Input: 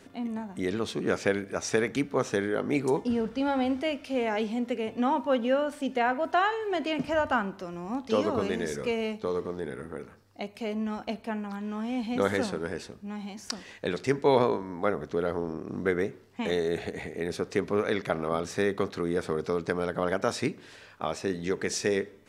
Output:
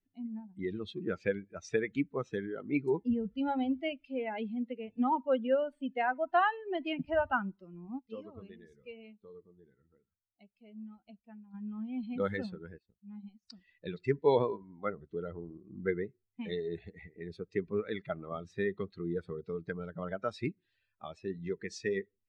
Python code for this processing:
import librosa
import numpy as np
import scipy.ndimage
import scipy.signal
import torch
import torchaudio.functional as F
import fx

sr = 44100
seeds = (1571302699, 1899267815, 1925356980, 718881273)

y = fx.transient(x, sr, attack_db=-5, sustain_db=-11, at=(12.75, 13.51), fade=0.02)
y = fx.edit(y, sr, fx.clip_gain(start_s=7.99, length_s=3.55, db=-6.0), tone=tone)
y = fx.bin_expand(y, sr, power=2.0)
y = scipy.signal.sosfilt(scipy.signal.butter(2, 3100.0, 'lowpass', fs=sr, output='sos'), y)